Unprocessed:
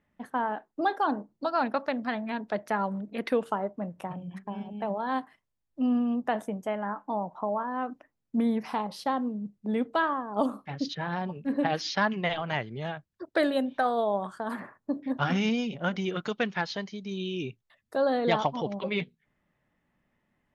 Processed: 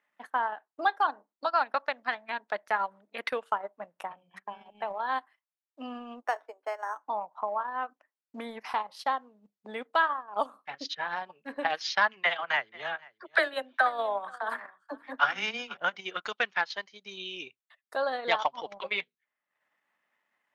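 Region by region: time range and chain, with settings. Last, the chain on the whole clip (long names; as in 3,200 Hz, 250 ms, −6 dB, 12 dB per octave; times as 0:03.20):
0:06.22–0:07.03: Butterworth high-pass 280 Hz 72 dB per octave + high-frequency loss of the air 140 metres + linearly interpolated sample-rate reduction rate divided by 6×
0:12.23–0:15.77: parametric band 1,600 Hz +4 dB 0.88 octaves + all-pass dispersion lows, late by 41 ms, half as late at 400 Hz + single-tap delay 484 ms −17.5 dB
whole clip: high-pass filter 1,100 Hz 12 dB per octave; spectral tilt −2 dB per octave; transient designer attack +2 dB, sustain −10 dB; level +5 dB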